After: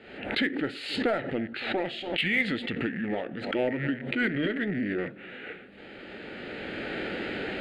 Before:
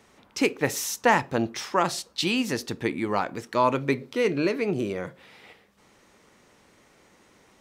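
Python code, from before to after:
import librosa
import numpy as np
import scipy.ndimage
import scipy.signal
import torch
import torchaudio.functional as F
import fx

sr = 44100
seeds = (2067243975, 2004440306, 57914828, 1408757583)

p1 = fx.rattle_buzz(x, sr, strikes_db=-38.0, level_db=-30.0)
p2 = fx.recorder_agc(p1, sr, target_db=-11.5, rise_db_per_s=12.0, max_gain_db=30)
p3 = fx.formant_shift(p2, sr, semitones=-5)
p4 = scipy.signal.sosfilt(scipy.signal.butter(2, 5300.0, 'lowpass', fs=sr, output='sos'), p3)
p5 = fx.bass_treble(p4, sr, bass_db=-13, treble_db=-12)
p6 = 10.0 ** (-25.0 / 20.0) * np.tanh(p5 / 10.0 ** (-25.0 / 20.0))
p7 = p5 + (p6 * 10.0 ** (-3.0 / 20.0))
p8 = fx.fixed_phaser(p7, sr, hz=2500.0, stages=4)
p9 = p8 + fx.echo_wet_lowpass(p8, sr, ms=283, feedback_pct=64, hz=1100.0, wet_db=-22.0, dry=0)
p10 = fx.pre_swell(p9, sr, db_per_s=69.0)
y = p10 * 10.0 ** (-3.0 / 20.0)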